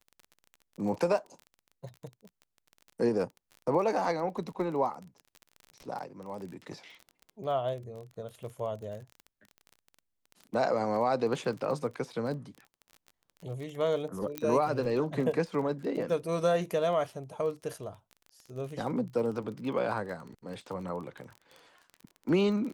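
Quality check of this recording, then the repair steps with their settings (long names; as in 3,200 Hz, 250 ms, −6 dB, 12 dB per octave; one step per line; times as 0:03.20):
surface crackle 27 per second −38 dBFS
0:14.38: click −16 dBFS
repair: click removal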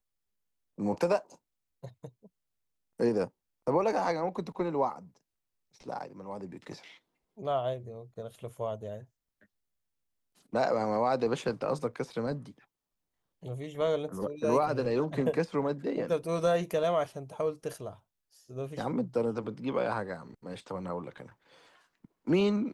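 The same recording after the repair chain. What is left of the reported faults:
none of them is left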